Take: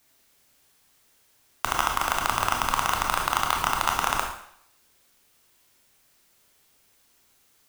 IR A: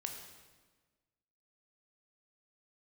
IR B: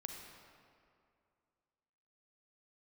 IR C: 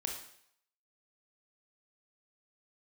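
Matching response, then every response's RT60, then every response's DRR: C; 1.4 s, 2.4 s, 0.65 s; 3.0 dB, 2.5 dB, 1.0 dB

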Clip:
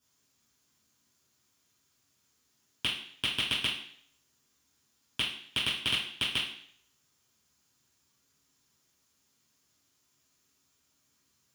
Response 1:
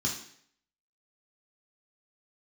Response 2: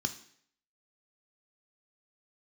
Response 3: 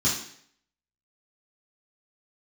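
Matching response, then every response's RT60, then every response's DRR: 3; 0.60 s, 0.60 s, 0.60 s; -2.5 dB, 7.5 dB, -8.0 dB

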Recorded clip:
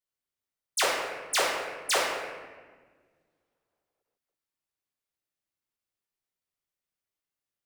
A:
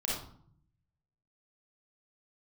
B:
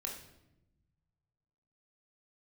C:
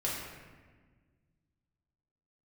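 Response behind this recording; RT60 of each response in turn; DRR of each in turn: C; 0.60 s, 0.90 s, 1.5 s; -5.5 dB, -1.0 dB, -6.0 dB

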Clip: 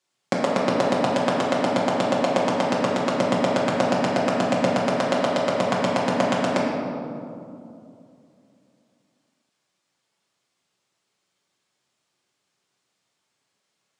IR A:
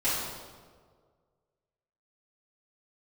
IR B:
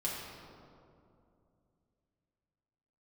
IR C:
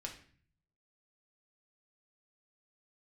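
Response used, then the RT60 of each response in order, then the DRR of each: B; 1.7 s, 2.6 s, 0.45 s; -14.0 dB, -5.5 dB, 0.0 dB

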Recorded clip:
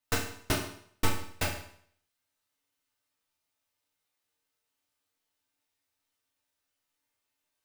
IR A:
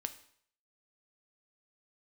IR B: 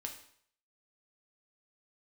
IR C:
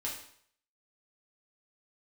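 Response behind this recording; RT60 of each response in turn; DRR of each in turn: C; 0.60 s, 0.60 s, 0.60 s; 8.5 dB, 2.0 dB, -5.0 dB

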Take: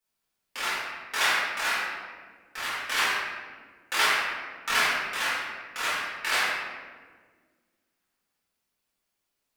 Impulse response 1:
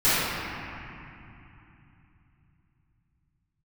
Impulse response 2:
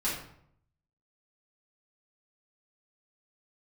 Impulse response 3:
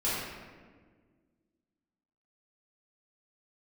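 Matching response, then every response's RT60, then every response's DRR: 3; 2.9 s, 0.65 s, 1.6 s; -18.5 dB, -8.5 dB, -10.5 dB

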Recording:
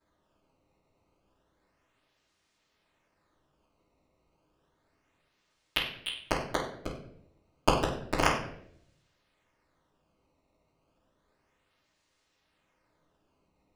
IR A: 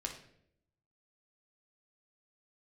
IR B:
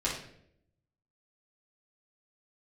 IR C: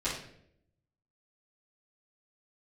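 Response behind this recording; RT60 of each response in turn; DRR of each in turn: C; 0.70 s, 0.70 s, 0.70 s; 0.0 dB, -9.0 dB, -14.0 dB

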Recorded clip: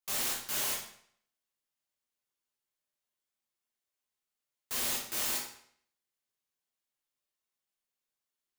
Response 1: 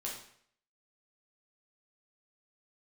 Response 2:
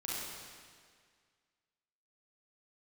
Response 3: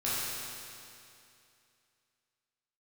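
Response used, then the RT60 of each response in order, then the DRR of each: 1; 0.60 s, 1.9 s, 2.6 s; -4.0 dB, -7.5 dB, -10.0 dB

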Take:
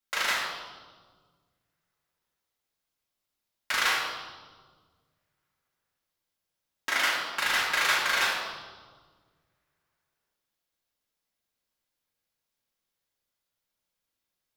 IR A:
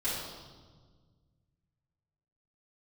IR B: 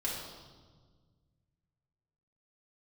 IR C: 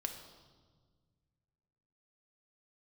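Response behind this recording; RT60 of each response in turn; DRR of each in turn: B; 1.5 s, 1.5 s, 1.6 s; -11.5 dB, -5.5 dB, 4.0 dB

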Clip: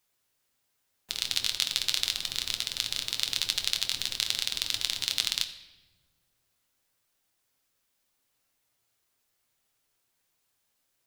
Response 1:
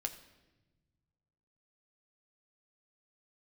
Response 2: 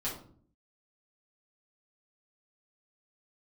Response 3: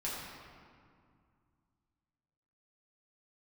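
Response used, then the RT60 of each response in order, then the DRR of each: 1; 1.1 s, 0.55 s, 2.2 s; 5.5 dB, -9.0 dB, -7.5 dB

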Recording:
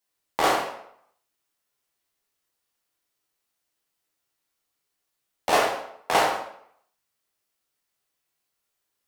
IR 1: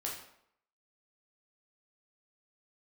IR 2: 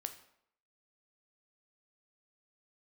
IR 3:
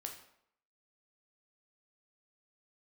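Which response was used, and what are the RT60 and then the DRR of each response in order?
1; 0.70 s, 0.70 s, 0.70 s; -3.0 dB, 7.5 dB, 2.5 dB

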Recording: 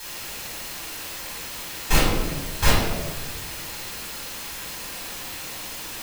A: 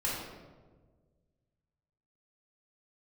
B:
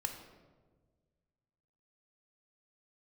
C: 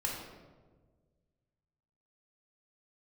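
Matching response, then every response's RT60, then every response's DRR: A; 1.5 s, 1.5 s, 1.5 s; -7.0 dB, 4.0 dB, -3.0 dB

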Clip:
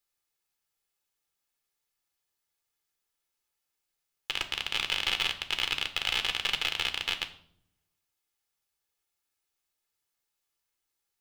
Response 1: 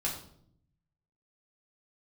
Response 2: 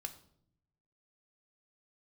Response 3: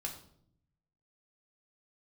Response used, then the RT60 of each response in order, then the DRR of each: 2; 0.65 s, 0.70 s, 0.65 s; -4.0 dB, 7.0 dB, 0.5 dB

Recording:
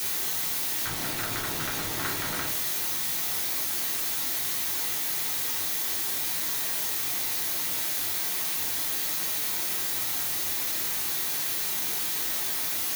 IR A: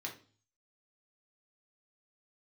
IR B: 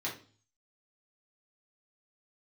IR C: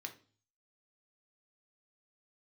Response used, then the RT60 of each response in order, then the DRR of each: B; 0.40 s, 0.40 s, 0.40 s; -1.0 dB, -6.0 dB, 4.0 dB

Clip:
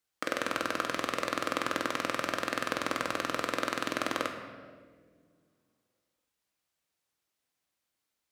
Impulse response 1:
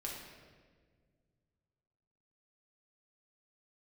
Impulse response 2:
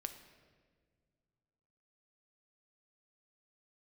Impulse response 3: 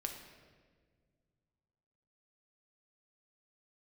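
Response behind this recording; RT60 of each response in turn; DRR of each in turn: 3; 1.7 s, no single decay rate, no single decay rate; -3.0 dB, 7.5 dB, 3.0 dB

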